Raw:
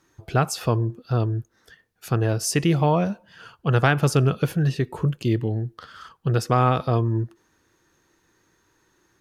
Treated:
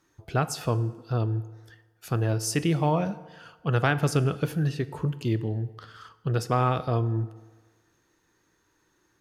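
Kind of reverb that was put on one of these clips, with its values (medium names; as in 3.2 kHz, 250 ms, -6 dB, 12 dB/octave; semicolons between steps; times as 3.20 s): FDN reverb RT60 1.4 s, low-frequency decay 0.75×, high-frequency decay 0.65×, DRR 13.5 dB; trim -4.5 dB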